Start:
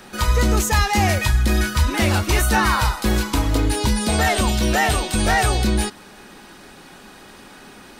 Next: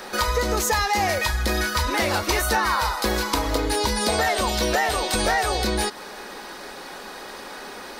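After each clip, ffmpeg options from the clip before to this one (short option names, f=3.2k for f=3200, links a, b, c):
-af "equalizer=f=125:t=o:w=1:g=-7,equalizer=f=500:t=o:w=1:g=10,equalizer=f=1k:t=o:w=1:g=7,equalizer=f=2k:t=o:w=1:g=9,equalizer=f=8k:t=o:w=1:g=-5,acompressor=threshold=-20dB:ratio=3,highshelf=f=3.4k:t=q:w=1.5:g=8,volume=-1.5dB"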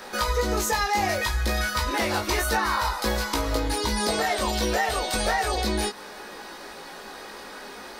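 -af "flanger=delay=17.5:depth=2.1:speed=0.59"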